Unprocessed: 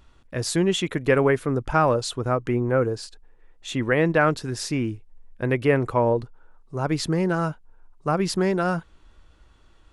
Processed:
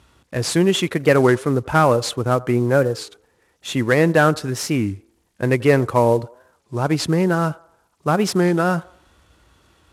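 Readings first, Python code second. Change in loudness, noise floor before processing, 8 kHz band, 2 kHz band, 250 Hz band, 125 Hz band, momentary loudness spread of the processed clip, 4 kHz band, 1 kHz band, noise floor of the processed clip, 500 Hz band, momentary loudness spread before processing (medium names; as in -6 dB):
+5.0 dB, -55 dBFS, +5.0 dB, +4.5 dB, +5.0 dB, +5.0 dB, 12 LU, +4.5 dB, +4.5 dB, -64 dBFS, +4.5 dB, 11 LU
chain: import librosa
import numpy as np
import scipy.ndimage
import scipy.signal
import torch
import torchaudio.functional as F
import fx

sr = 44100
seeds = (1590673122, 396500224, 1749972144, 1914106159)

y = fx.cvsd(x, sr, bps=64000)
y = scipy.signal.sosfilt(scipy.signal.butter(4, 64.0, 'highpass', fs=sr, output='sos'), y)
y = fx.echo_wet_bandpass(y, sr, ms=89, feedback_pct=41, hz=770.0, wet_db=-20.5)
y = fx.record_warp(y, sr, rpm=33.33, depth_cents=160.0)
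y = F.gain(torch.from_numpy(y), 5.0).numpy()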